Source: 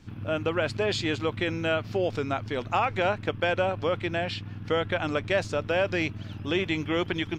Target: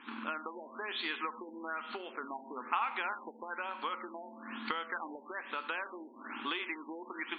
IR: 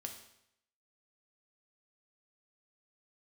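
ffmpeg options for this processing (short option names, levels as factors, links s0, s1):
-filter_complex "[0:a]asplit=2[s0][s1];[1:a]atrim=start_sample=2205[s2];[s1][s2]afir=irnorm=-1:irlink=0,volume=1.88[s3];[s0][s3]amix=inputs=2:normalize=0,afftfilt=real='re*between(b*sr/4096,210,7000)':imag='im*between(b*sr/4096,210,7000)':win_size=4096:overlap=0.75,acompressor=threshold=0.0282:ratio=20,lowshelf=f=790:t=q:w=3:g=-8.5,afftfilt=real='re*lt(b*sr/1024,940*pow(4700/940,0.5+0.5*sin(2*PI*1.1*pts/sr)))':imag='im*lt(b*sr/1024,940*pow(4700/940,0.5+0.5*sin(2*PI*1.1*pts/sr)))':win_size=1024:overlap=0.75,volume=1.12"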